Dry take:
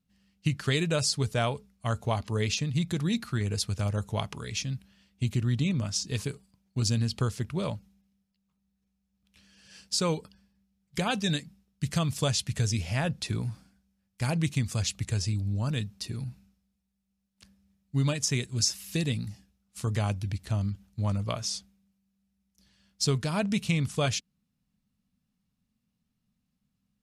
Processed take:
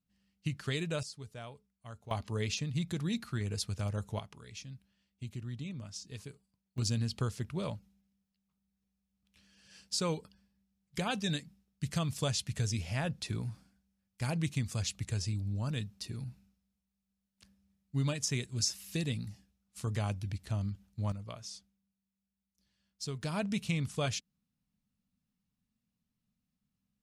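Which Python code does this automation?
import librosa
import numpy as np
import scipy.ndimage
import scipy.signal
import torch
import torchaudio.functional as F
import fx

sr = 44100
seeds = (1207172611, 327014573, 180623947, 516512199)

y = fx.gain(x, sr, db=fx.steps((0.0, -8.0), (1.03, -18.5), (2.11, -6.0), (4.19, -14.0), (6.78, -5.5), (21.12, -13.0), (23.22, -6.0)))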